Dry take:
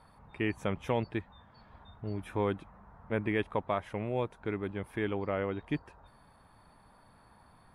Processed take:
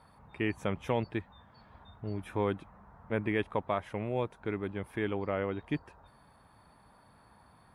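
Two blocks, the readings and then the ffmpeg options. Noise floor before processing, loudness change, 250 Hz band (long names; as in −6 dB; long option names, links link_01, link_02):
−61 dBFS, 0.0 dB, 0.0 dB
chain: -af "highpass=44"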